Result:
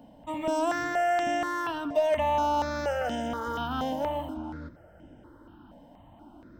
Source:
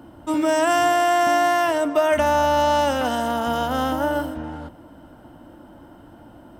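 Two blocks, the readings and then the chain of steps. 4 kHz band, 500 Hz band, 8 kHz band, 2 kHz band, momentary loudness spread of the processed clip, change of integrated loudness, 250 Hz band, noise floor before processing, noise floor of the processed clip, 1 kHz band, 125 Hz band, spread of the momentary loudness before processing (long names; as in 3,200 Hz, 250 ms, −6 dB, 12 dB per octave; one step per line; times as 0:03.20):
−10.5 dB, −8.5 dB, −13.0 dB, −9.0 dB, 12 LU, −8.5 dB, −8.5 dB, −46 dBFS, −54 dBFS, −8.5 dB, −6.5 dB, 9 LU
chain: parametric band 11,000 Hz −14 dB 0.81 octaves
in parallel at −8 dB: soft clipping −22 dBFS, distortion −9 dB
on the sum: step-sequenced phaser 4.2 Hz 350–4,200 Hz
level −6.5 dB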